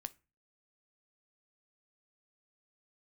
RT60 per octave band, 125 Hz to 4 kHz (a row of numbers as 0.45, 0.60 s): 0.50, 0.40, 0.30, 0.30, 0.30, 0.20 s